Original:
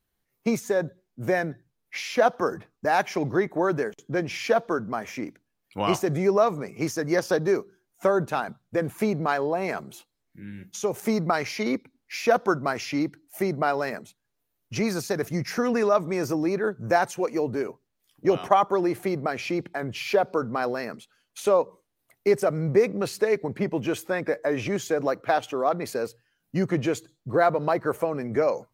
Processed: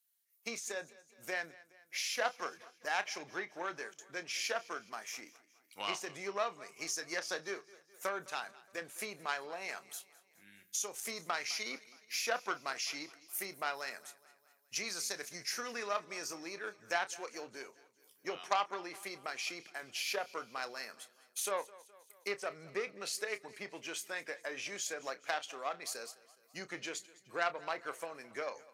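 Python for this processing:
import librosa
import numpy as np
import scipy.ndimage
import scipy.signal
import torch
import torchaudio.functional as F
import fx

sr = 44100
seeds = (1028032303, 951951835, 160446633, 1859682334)

p1 = fx.env_lowpass_down(x, sr, base_hz=2800.0, full_db=-17.0)
p2 = fx.cheby_harmonics(p1, sr, harmonics=(7,), levels_db=(-27,), full_scale_db=-5.0)
p3 = np.diff(p2, prepend=0.0)
p4 = fx.doubler(p3, sr, ms=30.0, db=-13)
p5 = p4 + fx.echo_feedback(p4, sr, ms=209, feedback_pct=55, wet_db=-20.5, dry=0)
y = p5 * librosa.db_to_amplitude(5.5)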